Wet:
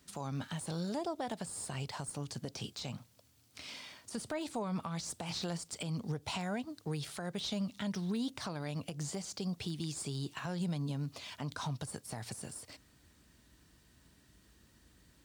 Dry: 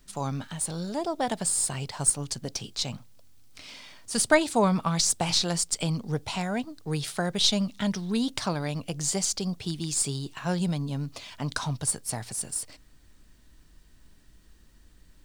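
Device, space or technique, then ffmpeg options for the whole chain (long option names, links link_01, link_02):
podcast mastering chain: -af "highpass=frequency=63:width=0.5412,highpass=frequency=63:width=1.3066,deesser=0.85,acompressor=threshold=-30dB:ratio=3,alimiter=level_in=2dB:limit=-24dB:level=0:latency=1:release=152,volume=-2dB,volume=-1.5dB" -ar 44100 -c:a libmp3lame -b:a 112k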